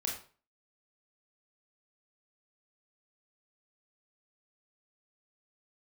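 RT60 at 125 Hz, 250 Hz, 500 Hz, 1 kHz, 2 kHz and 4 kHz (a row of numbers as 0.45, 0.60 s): 0.40, 0.35, 0.40, 0.40, 0.35, 0.35 s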